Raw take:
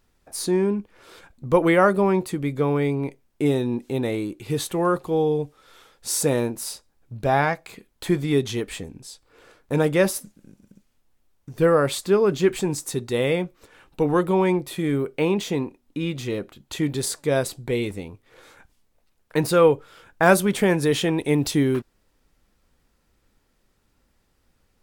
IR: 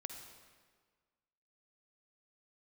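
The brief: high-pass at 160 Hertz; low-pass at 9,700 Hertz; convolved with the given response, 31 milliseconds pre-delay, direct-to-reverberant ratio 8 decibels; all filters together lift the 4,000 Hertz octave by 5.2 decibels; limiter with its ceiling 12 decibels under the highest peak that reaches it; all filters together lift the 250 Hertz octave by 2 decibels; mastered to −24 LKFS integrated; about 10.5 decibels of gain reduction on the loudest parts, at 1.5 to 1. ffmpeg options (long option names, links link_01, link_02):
-filter_complex "[0:a]highpass=160,lowpass=9700,equalizer=frequency=250:width_type=o:gain=4,equalizer=frequency=4000:width_type=o:gain=6.5,acompressor=threshold=-41dB:ratio=1.5,alimiter=limit=-23.5dB:level=0:latency=1,asplit=2[link_01][link_02];[1:a]atrim=start_sample=2205,adelay=31[link_03];[link_02][link_03]afir=irnorm=-1:irlink=0,volume=-5dB[link_04];[link_01][link_04]amix=inputs=2:normalize=0,volume=9.5dB"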